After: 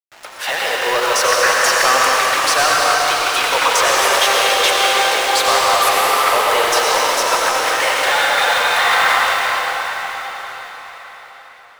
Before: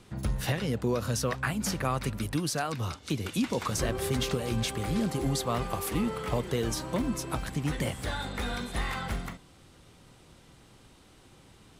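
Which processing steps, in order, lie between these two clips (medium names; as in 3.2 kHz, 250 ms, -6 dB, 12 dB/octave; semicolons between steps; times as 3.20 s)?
send-on-delta sampling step -39.5 dBFS; Bessel high-pass 910 Hz, order 6; treble shelf 5.3 kHz -12 dB; waveshaping leveller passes 3; level rider gain up to 10.5 dB; reverberation RT60 5.3 s, pre-delay 79 ms, DRR -4.5 dB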